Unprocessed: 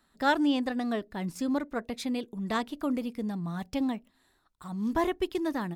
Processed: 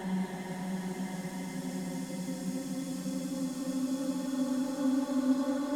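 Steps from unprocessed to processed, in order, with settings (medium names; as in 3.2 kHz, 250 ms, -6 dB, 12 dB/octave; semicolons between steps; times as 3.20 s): Paulstretch 21×, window 0.50 s, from 1.22 s; trim -2 dB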